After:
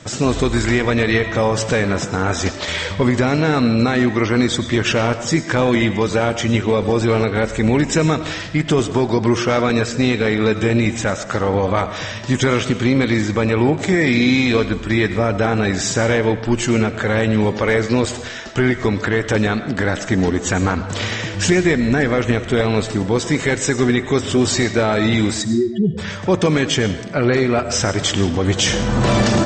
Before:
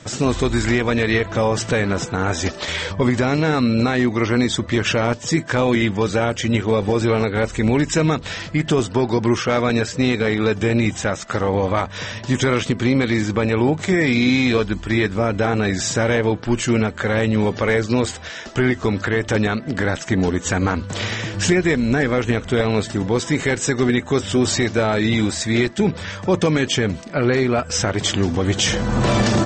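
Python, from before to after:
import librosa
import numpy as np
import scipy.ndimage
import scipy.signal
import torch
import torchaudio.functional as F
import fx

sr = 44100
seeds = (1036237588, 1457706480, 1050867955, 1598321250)

y = fx.spec_expand(x, sr, power=3.8, at=(25.41, 25.97), fade=0.02)
y = fx.rev_freeverb(y, sr, rt60_s=0.84, hf_ratio=0.8, predelay_ms=60, drr_db=11.0)
y = y * 10.0 ** (1.5 / 20.0)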